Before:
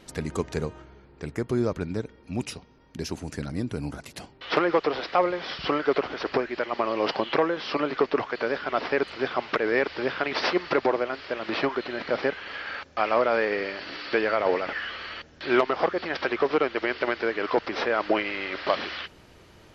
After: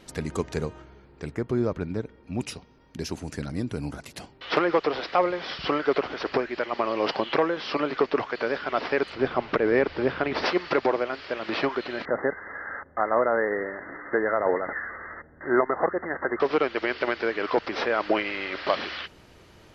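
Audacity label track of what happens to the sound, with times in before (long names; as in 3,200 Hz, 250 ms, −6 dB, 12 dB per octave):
1.350000	2.410000	low-pass filter 2,600 Hz 6 dB per octave
9.150000	10.460000	spectral tilt −2.5 dB per octave
12.050000	16.400000	linear-phase brick-wall low-pass 2,100 Hz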